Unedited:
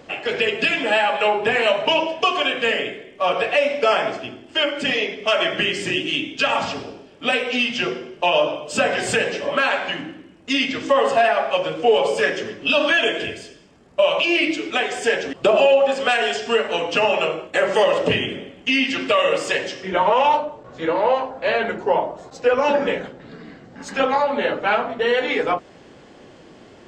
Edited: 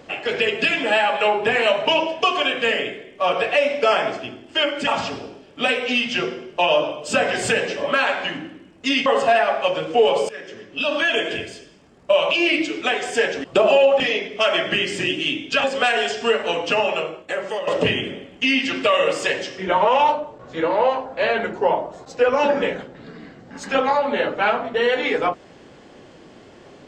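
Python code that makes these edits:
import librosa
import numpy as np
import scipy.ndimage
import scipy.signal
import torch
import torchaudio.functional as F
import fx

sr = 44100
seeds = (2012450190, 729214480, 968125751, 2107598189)

y = fx.edit(x, sr, fx.move(start_s=4.87, length_s=1.64, to_s=15.89),
    fx.cut(start_s=10.7, length_s=0.25),
    fx.fade_in_from(start_s=12.18, length_s=1.04, floor_db=-20.0),
    fx.fade_out_to(start_s=16.81, length_s=1.11, floor_db=-12.5), tone=tone)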